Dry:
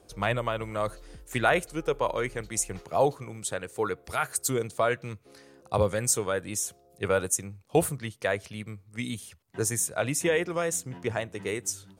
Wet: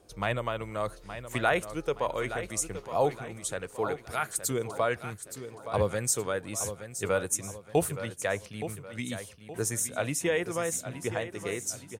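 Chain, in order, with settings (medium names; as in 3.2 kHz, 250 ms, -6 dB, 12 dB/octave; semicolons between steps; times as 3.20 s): feedback delay 870 ms, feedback 41%, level -11 dB; trim -2.5 dB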